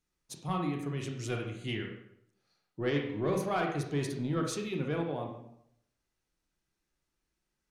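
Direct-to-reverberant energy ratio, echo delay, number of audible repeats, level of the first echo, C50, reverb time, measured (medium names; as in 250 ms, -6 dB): 1.5 dB, no echo, no echo, no echo, 4.5 dB, 0.75 s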